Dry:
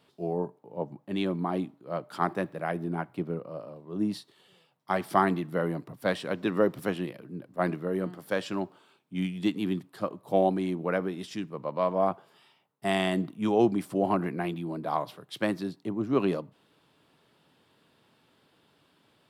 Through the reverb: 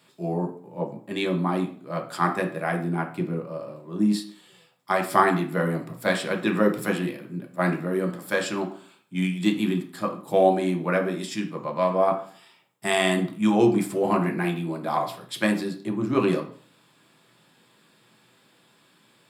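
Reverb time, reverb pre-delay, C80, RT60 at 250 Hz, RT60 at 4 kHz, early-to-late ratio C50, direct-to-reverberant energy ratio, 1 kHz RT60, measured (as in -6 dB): 0.45 s, 3 ms, 15.0 dB, 0.55 s, 0.45 s, 10.5 dB, 3.0 dB, 0.45 s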